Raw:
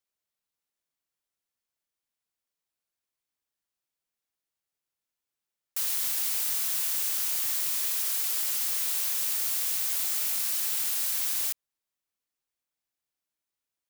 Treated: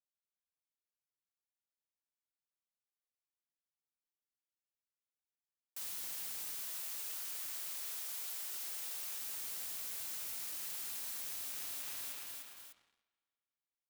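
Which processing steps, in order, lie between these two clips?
noise gate −26 dBFS, range −20 dB
flanger 0.44 Hz, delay 3 ms, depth 3.4 ms, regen −49%
repeating echo 300 ms, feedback 37%, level −10 dB
convolution reverb RT60 2.4 s, pre-delay 120 ms, DRR 8.5 dB
brickwall limiter −52.5 dBFS, peak gain reduction 22 dB
leveller curve on the samples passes 3
0:06.61–0:09.20: high-pass filter 330 Hz 12 dB per octave
level +14 dB

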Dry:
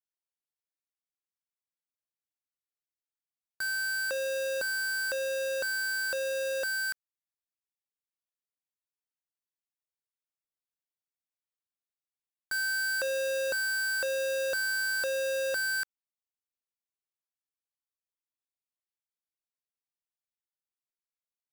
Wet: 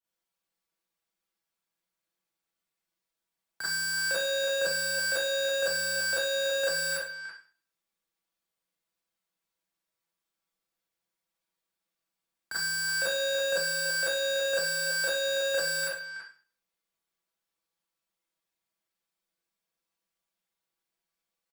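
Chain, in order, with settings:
high-shelf EQ 4,900 Hz −5 dB
comb filter 6.2 ms, depth 61%
brickwall limiter −31 dBFS, peak gain reduction 5 dB
frequency shifter +13 Hz
far-end echo of a speakerphone 330 ms, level −7 dB
four-comb reverb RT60 0.41 s, combs from 33 ms, DRR −9 dB

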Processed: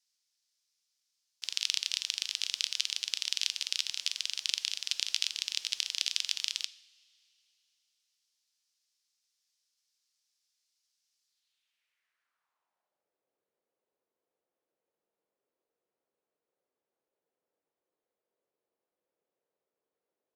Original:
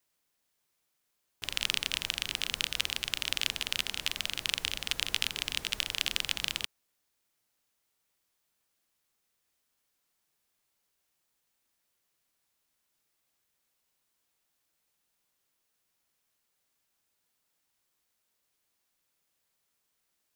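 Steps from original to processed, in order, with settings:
coupled-rooms reverb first 0.62 s, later 3.3 s, from −18 dB, DRR 14.5 dB
band-pass filter sweep 5,200 Hz → 460 Hz, 0:11.25–0:13.20
level +6.5 dB

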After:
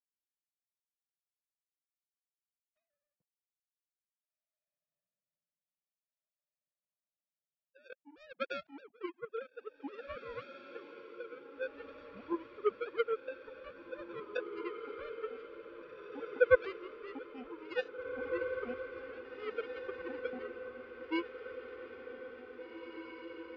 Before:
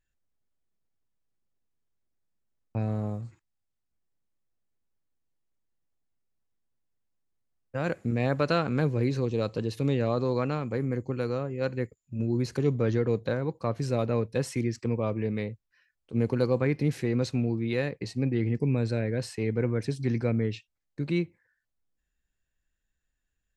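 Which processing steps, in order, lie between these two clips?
three sine waves on the formant tracks
power curve on the samples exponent 3
feedback delay with all-pass diffusion 1,996 ms, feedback 60%, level −7.5 dB
level +2 dB

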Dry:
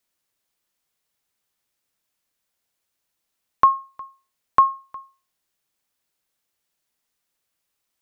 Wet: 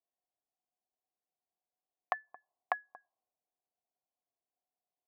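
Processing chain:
gliding playback speed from 181% → 135%
formant resonators in series a
parametric band 400 Hz +11.5 dB 3 octaves
low-pass that shuts in the quiet parts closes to 380 Hz, open at −44.5 dBFS
level +6 dB

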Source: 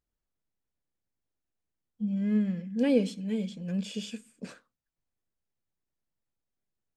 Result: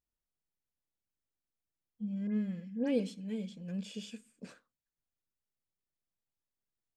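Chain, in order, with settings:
0:02.27–0:03.00: all-pass dispersion highs, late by 93 ms, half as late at 2,900 Hz
level −7 dB

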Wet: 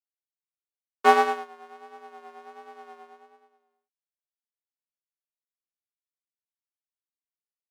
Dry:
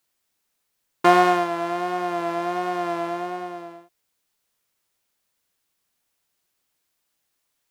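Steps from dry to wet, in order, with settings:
frequency shifter +68 Hz
expander for the loud parts 2.5 to 1, over −36 dBFS

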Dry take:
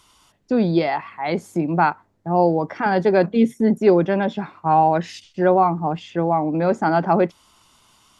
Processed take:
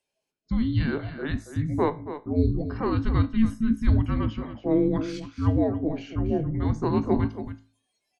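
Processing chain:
frequency shifter −450 Hz
tuned comb filter 54 Hz, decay 0.41 s, harmonics all, mix 50%
noise reduction from a noise print of the clip's start 22 dB
single-tap delay 278 ms −11.5 dB
level −2 dB

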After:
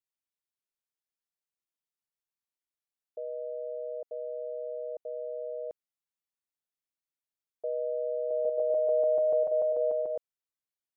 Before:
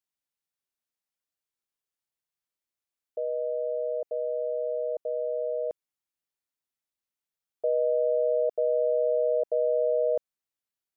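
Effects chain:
0:08.16–0:10.16: feedback delay that plays each chunk backwards 146 ms, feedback 66%, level −2 dB
level −7 dB

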